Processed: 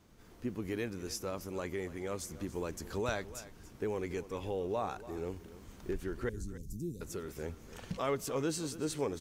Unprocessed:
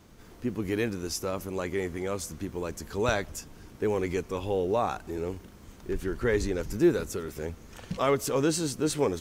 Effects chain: recorder AGC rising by 6.2 dB/s; 6.29–7.01 s: Chebyshev band-stop 180–8100 Hz, order 2; delay 285 ms -16 dB; trim -8.5 dB

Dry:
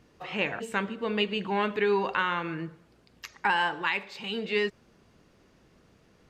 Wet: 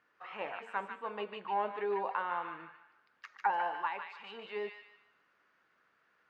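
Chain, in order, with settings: auto-wah 650–1500 Hz, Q 2.6, down, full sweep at -21.5 dBFS; feedback echo behind a high-pass 149 ms, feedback 35%, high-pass 1.5 kHz, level -3.5 dB

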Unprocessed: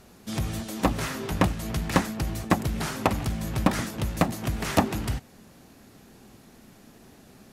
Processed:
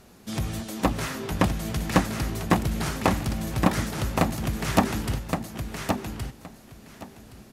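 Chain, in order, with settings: feedback delay 1119 ms, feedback 16%, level -4.5 dB

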